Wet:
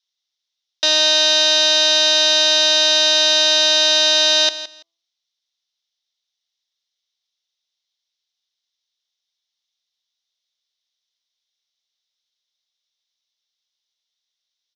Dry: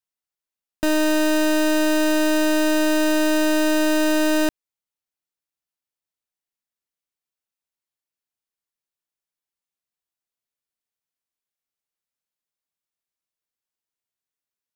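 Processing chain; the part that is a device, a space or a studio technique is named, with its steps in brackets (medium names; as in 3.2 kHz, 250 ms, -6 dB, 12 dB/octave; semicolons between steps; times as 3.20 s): phone speaker on a table (cabinet simulation 490–6800 Hz, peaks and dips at 2.1 kHz +7 dB, 3.7 kHz +9 dB, 5.6 kHz +5 dB); high-order bell 4.3 kHz +12.5 dB 1.3 oct; feedback delay 167 ms, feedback 19%, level -14 dB; de-hum 166.9 Hz, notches 7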